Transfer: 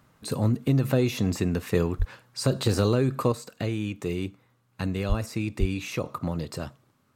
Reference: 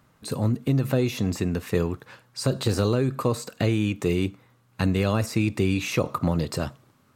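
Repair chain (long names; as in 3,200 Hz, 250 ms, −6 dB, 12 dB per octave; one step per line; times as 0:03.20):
0:01.98–0:02.10: high-pass filter 140 Hz 24 dB per octave
0:03.32: level correction +6 dB
0:05.08–0:05.20: high-pass filter 140 Hz 24 dB per octave
0:05.59–0:05.71: high-pass filter 140 Hz 24 dB per octave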